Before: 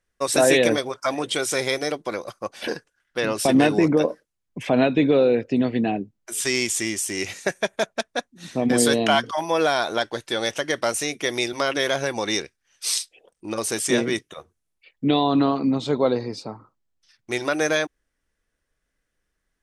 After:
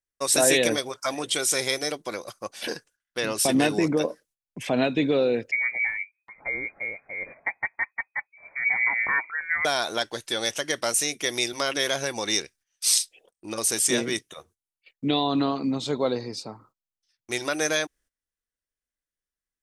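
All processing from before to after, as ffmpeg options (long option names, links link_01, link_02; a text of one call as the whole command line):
ffmpeg -i in.wav -filter_complex "[0:a]asettb=1/sr,asplit=3[link_01][link_02][link_03];[link_01]atrim=end=5.514[link_04];[link_02]atrim=start=5.51:end=9.65,asetpts=PTS-STARTPTS,afade=type=in:duration=0.004:curve=qsin,afade=type=out:start_time=4.136:duration=0.004:curve=qsin,acrossover=split=1200[link_05][link_06];[link_05]aeval=exprs='val(0)*(1-0.5/2+0.5/2*cos(2*PI*6*n/s))':channel_layout=same[link_07];[link_06]aeval=exprs='val(0)*(1-0.5/2-0.5/2*cos(2*PI*6*n/s))':channel_layout=same[link_08];[link_07][link_08]amix=inputs=2:normalize=0,lowpass=frequency=2100:width_type=q:width=0.5098,lowpass=frequency=2100:width_type=q:width=0.6013,lowpass=frequency=2100:width_type=q:width=0.9,lowpass=frequency=2100:width_type=q:width=2.563,afreqshift=-2500[link_09];[link_03]atrim=start=9.646[link_10];[link_04][link_09]acrossfade=duration=0.004:curve1=hsin:curve2=qsin[link_11];[link_11][link_10]acrossfade=duration=0.004:curve1=qsin:curve2=hsin,agate=range=-15dB:threshold=-53dB:ratio=16:detection=peak,highshelf=frequency=3700:gain=11,volume=-5dB" out.wav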